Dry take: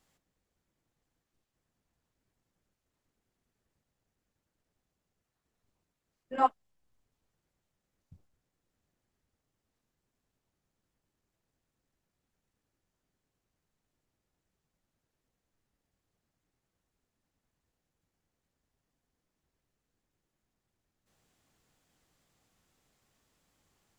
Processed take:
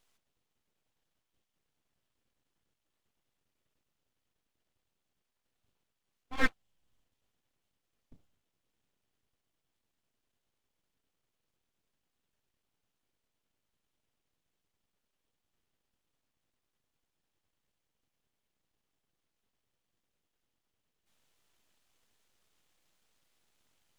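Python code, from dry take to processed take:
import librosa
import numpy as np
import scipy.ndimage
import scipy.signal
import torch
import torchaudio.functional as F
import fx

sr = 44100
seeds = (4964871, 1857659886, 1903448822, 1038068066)

y = fx.peak_eq(x, sr, hz=3100.0, db=7.5, octaves=0.54)
y = np.abs(y)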